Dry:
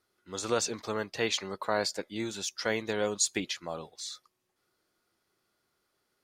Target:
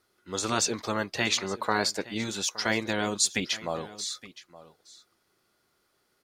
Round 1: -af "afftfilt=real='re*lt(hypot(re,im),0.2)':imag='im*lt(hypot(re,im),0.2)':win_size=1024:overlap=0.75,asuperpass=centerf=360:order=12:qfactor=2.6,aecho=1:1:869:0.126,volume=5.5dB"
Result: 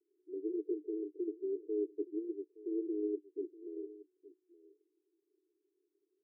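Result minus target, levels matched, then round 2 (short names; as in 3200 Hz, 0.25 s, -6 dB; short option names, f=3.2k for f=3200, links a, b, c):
500 Hz band +6.5 dB
-af "afftfilt=real='re*lt(hypot(re,im),0.2)':imag='im*lt(hypot(re,im),0.2)':win_size=1024:overlap=0.75,aecho=1:1:869:0.126,volume=5.5dB"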